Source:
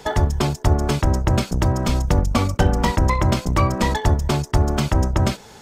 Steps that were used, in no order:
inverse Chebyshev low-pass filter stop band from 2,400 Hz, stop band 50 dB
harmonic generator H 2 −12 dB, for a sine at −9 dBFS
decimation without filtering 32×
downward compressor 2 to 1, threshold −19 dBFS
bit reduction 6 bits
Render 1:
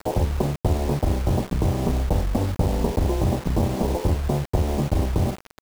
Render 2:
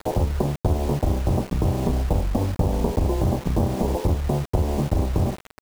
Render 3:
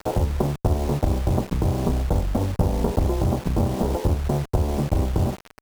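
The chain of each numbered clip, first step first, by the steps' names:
decimation without filtering, then harmonic generator, then downward compressor, then inverse Chebyshev low-pass filter, then bit reduction
harmonic generator, then decimation without filtering, then inverse Chebyshev low-pass filter, then bit reduction, then downward compressor
decimation without filtering, then inverse Chebyshev low-pass filter, then bit reduction, then downward compressor, then harmonic generator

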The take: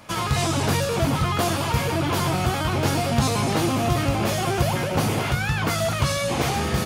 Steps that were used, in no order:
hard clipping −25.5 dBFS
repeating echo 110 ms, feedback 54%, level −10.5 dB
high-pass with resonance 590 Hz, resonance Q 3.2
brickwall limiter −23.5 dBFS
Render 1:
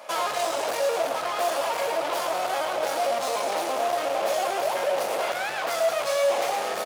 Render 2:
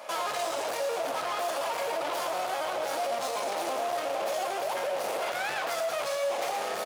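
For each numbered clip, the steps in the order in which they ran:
hard clipping, then repeating echo, then brickwall limiter, then high-pass with resonance
hard clipping, then high-pass with resonance, then brickwall limiter, then repeating echo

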